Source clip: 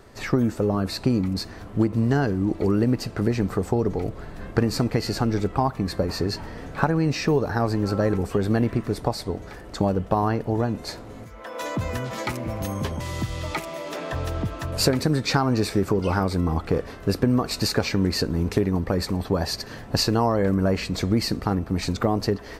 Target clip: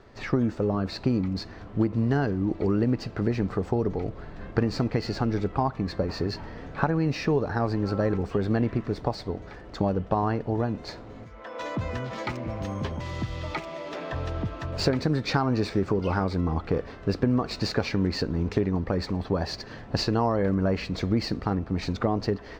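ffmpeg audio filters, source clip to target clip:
ffmpeg -i in.wav -filter_complex "[0:a]highshelf=frequency=9300:gain=-10.5,acrossover=split=6700[link_01][link_02];[link_02]acrusher=samples=35:mix=1:aa=0.000001[link_03];[link_01][link_03]amix=inputs=2:normalize=0,volume=-3dB" out.wav

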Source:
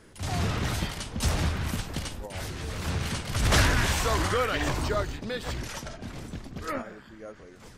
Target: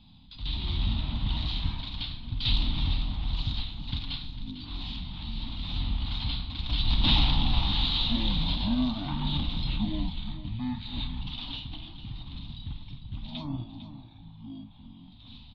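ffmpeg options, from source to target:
ffmpeg -i in.wav -filter_complex "[0:a]firequalizer=gain_entry='entry(540,0);entry(820,-26);entry(1800,-7);entry(3200,-19);entry(7400,12);entry(12000,-24)':delay=0.05:min_phase=1,asetrate=22050,aresample=44100,asplit=2[link_01][link_02];[link_02]aecho=0:1:48|451:0.224|0.237[link_03];[link_01][link_03]amix=inputs=2:normalize=0" out.wav

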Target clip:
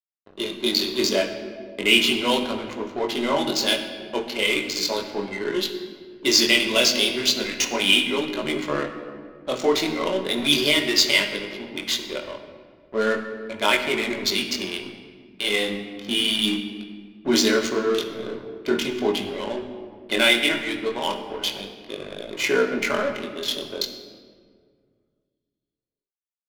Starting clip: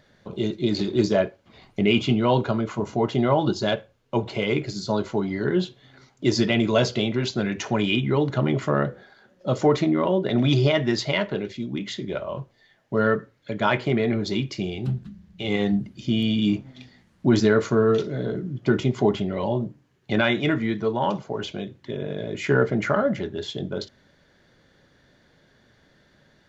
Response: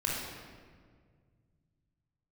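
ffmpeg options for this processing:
-filter_complex "[0:a]acrossover=split=1300[link_01][link_02];[link_02]aexciter=amount=3.2:drive=7.5:freq=2100[link_03];[link_01][link_03]amix=inputs=2:normalize=0,highpass=frequency=240:width=0.5412,highpass=frequency=240:width=1.3066,aeval=exprs='sgn(val(0))*max(abs(val(0))-0.0188,0)':channel_layout=same,flanger=delay=19:depth=5.4:speed=0.36,adynamicsmooth=sensitivity=5:basefreq=1600,asplit=2[link_04][link_05];[1:a]atrim=start_sample=2205[link_06];[link_05][link_06]afir=irnorm=-1:irlink=0,volume=-9.5dB[link_07];[link_04][link_07]amix=inputs=2:normalize=0,adynamicequalizer=threshold=0.0224:dfrequency=580:dqfactor=0.91:tfrequency=580:tqfactor=0.91:attack=5:release=100:ratio=0.375:range=2:mode=cutabove:tftype=bell,volume=1dB"

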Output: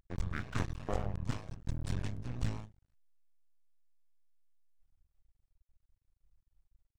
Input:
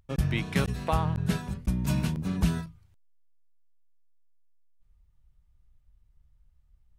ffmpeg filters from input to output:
ffmpeg -i in.wav -af "asetrate=28595,aresample=44100,atempo=1.54221,aeval=exprs='max(val(0),0)':channel_layout=same,volume=-5dB" out.wav

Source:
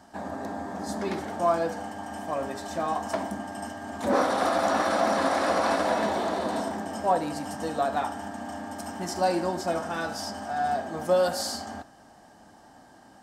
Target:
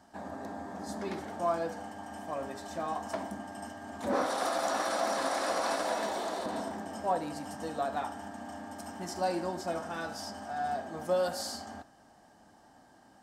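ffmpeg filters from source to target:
ffmpeg -i in.wav -filter_complex "[0:a]asettb=1/sr,asplit=3[link_01][link_02][link_03];[link_01]atrim=end=4.264[link_04];[link_02]atrim=start=4.26:end=6.46,asetpts=PTS-STARTPTS,afade=type=in:duration=0.004:curve=qsin,afade=type=out:start_time=2.196:duration=0.004:curve=qsin,bass=frequency=250:gain=-9,treble=frequency=4000:gain=7[link_05];[link_03]atrim=start=6.456[link_06];[link_04][link_05]acrossfade=duration=0.004:curve1=hsin:curve2=qsin[link_07];[link_07][link_06]acrossfade=duration=0.004:curve1=qsin:curve2=hsin,volume=-6.5dB" out.wav

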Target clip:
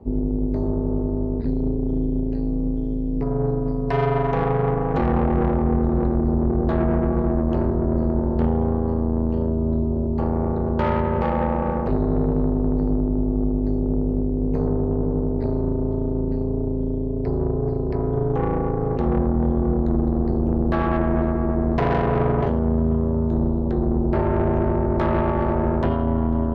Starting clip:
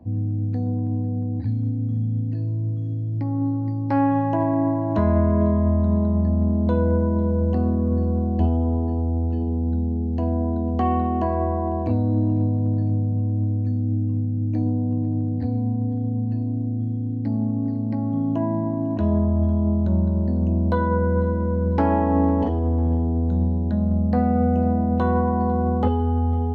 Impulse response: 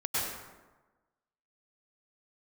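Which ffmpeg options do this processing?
-af "aeval=exprs='(tanh(11.2*val(0)+0.5)-tanh(0.5))/11.2':channel_layout=same,aeval=exprs='val(0)*sin(2*PI*150*n/s)':channel_layout=same,volume=7.5dB"

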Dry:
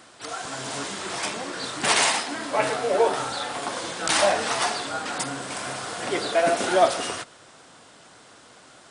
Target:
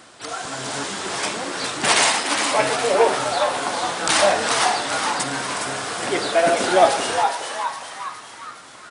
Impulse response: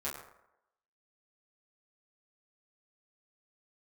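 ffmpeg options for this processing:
-filter_complex "[0:a]asplit=7[link_01][link_02][link_03][link_04][link_05][link_06][link_07];[link_02]adelay=413,afreqshift=140,volume=-6dB[link_08];[link_03]adelay=826,afreqshift=280,volume=-11.7dB[link_09];[link_04]adelay=1239,afreqshift=420,volume=-17.4dB[link_10];[link_05]adelay=1652,afreqshift=560,volume=-23dB[link_11];[link_06]adelay=2065,afreqshift=700,volume=-28.7dB[link_12];[link_07]adelay=2478,afreqshift=840,volume=-34.4dB[link_13];[link_01][link_08][link_09][link_10][link_11][link_12][link_13]amix=inputs=7:normalize=0,volume=3.5dB"

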